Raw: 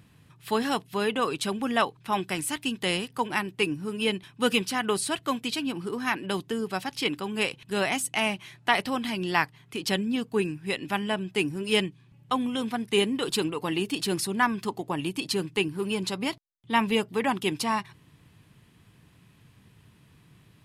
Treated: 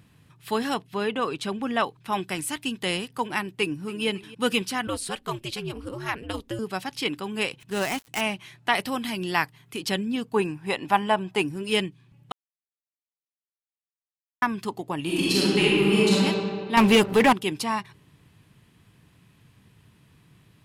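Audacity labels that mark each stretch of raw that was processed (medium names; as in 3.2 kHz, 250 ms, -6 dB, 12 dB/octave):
0.740000	1.840000	treble shelf 6.4 kHz -10 dB
3.500000	4.060000	echo throw 280 ms, feedback 55%, level -17.5 dB
4.870000	6.590000	ring modulator 110 Hz
7.600000	8.210000	dead-time distortion of 0.08 ms
8.750000	9.830000	treble shelf 9.5 kHz +9 dB
10.340000	11.420000	peaking EQ 880 Hz +11.5 dB 1.1 oct
12.320000	14.420000	mute
15.040000	16.140000	reverb throw, RT60 2.2 s, DRR -8.5 dB
16.770000	17.330000	waveshaping leveller passes 3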